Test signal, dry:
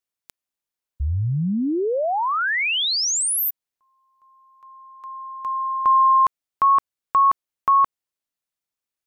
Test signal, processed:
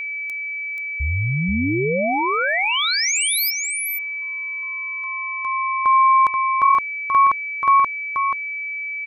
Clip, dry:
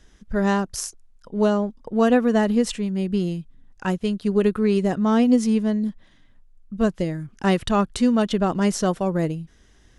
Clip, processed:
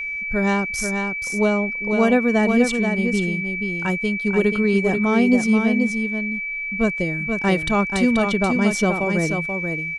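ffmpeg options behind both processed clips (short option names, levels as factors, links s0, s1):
-af "aecho=1:1:482:0.531,aeval=exprs='val(0)+0.0562*sin(2*PI*2300*n/s)':c=same"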